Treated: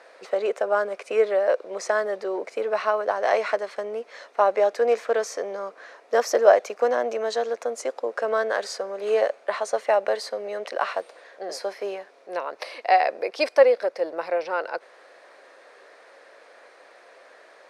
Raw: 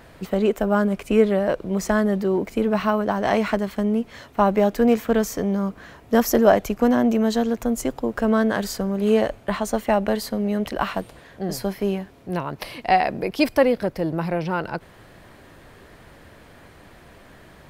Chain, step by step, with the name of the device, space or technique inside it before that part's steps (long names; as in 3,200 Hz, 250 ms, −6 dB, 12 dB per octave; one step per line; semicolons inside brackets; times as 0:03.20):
phone speaker on a table (loudspeaker in its box 470–8,400 Hz, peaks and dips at 520 Hz +5 dB, 920 Hz −3 dB, 3,100 Hz −7 dB, 7,400 Hz −6 dB)